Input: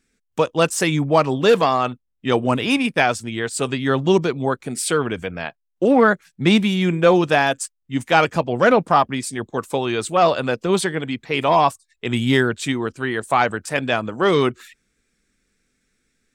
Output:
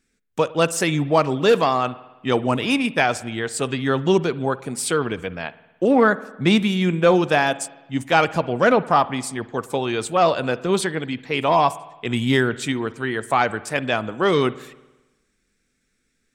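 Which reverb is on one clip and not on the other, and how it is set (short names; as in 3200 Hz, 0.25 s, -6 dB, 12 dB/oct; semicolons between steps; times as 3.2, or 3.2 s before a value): spring tank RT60 1.1 s, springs 54 ms, chirp 25 ms, DRR 17 dB; gain -1.5 dB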